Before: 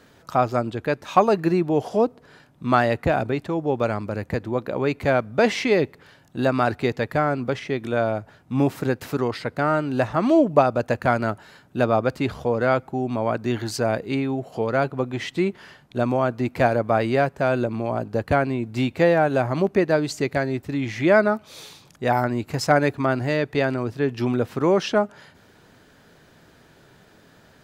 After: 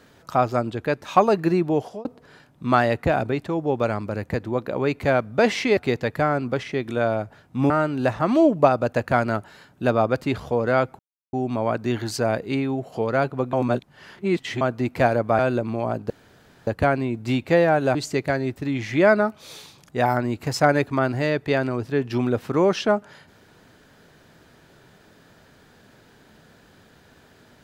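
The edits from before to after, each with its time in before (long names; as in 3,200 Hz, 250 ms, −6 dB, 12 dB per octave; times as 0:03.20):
0:01.73–0:02.05: fade out
0:05.77–0:06.73: remove
0:08.66–0:09.64: remove
0:12.93: splice in silence 0.34 s
0:15.13–0:16.21: reverse
0:16.99–0:17.45: remove
0:18.16: splice in room tone 0.57 s
0:19.44–0:20.02: remove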